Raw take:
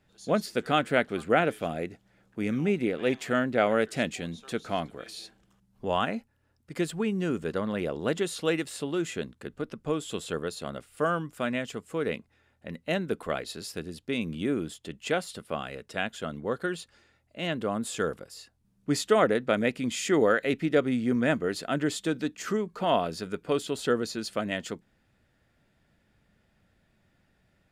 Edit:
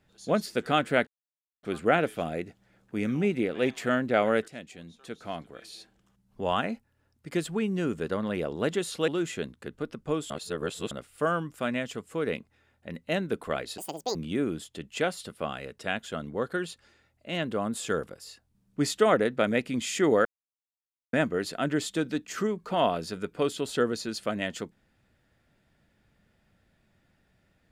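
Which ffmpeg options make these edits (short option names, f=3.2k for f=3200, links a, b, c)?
-filter_complex "[0:a]asplit=10[a][b][c][d][e][f][g][h][i][j];[a]atrim=end=1.07,asetpts=PTS-STARTPTS,afade=t=out:st=1.066:d=0.004:c=hsin,apad=pad_dur=0.56[k];[b]atrim=start=1.07:end=3.92,asetpts=PTS-STARTPTS,afade=t=in:d=0.004:c=hsin,afade=t=out:st=2.846:d=0.004:c=hsin:silence=0.16788[l];[c]atrim=start=3.92:end=8.522,asetpts=PTS-STARTPTS,afade=t=in:d=2.14:silence=0.16788[m];[d]atrim=start=8.868:end=10.092[n];[e]atrim=start=10.088:end=10.702,asetpts=PTS-STARTPTS,areverse[o];[f]atrim=start=10.698:end=13.574[p];[g]atrim=start=13.57:end=14.25,asetpts=PTS-STARTPTS,asetrate=80703,aresample=44100[q];[h]atrim=start=14.246:end=20.35,asetpts=PTS-STARTPTS,afade=t=out:st=6.1:d=0.004:c=hsin[r];[i]atrim=start=20.35:end=21.23,asetpts=PTS-STARTPTS,volume=0[s];[j]atrim=start=21.23,asetpts=PTS-STARTPTS,afade=t=in:d=0.004:c=hsin[t];[k][l][m]concat=n=3:v=0:a=1[u];[u][n]acrossfade=d=0.004:c1=hsin:c2=hsin[v];[v][o]acrossfade=d=0.004:c1=hsin:c2=hsin[w];[w][p]acrossfade=d=0.004:c1=hsin:c2=hsin[x];[x][q]acrossfade=d=0.004:c1=hsin:c2=hsin[y];[r][s][t]concat=n=3:v=0:a=1[z];[y][z]acrossfade=d=0.004:c1=hsin:c2=hsin"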